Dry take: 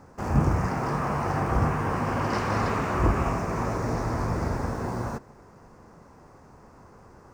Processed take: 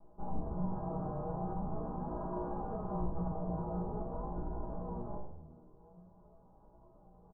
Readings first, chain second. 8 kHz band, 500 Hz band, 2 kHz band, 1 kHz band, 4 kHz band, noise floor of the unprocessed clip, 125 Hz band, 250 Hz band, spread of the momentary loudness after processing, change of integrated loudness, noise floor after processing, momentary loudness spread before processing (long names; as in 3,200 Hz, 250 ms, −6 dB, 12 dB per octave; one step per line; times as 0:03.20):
below −35 dB, −11.0 dB, −32.0 dB, −14.0 dB, below −40 dB, −52 dBFS, −14.0 dB, −10.5 dB, 15 LU, −13.0 dB, −62 dBFS, 6 LU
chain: lower of the sound and its delayed copy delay 4.9 ms
inverse Chebyshev low-pass filter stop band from 1,900 Hz, stop band 40 dB
low-shelf EQ 76 Hz +10.5 dB
comb filter 6.2 ms, depth 64%
brickwall limiter −19 dBFS, peak gain reduction 11 dB
flanger 0.44 Hz, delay 2.8 ms, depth 4 ms, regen +51%
tuned comb filter 60 Hz, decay 0.58 s, harmonics all, mix 90%
on a send: echo with shifted repeats 91 ms, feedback 58%, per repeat −79 Hz, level −14 dB
on the sum: level +3 dB